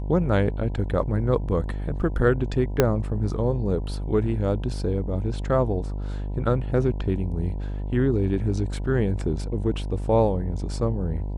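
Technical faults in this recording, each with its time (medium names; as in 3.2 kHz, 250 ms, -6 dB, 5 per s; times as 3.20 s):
buzz 50 Hz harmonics 20 -29 dBFS
2.80 s: pop -4 dBFS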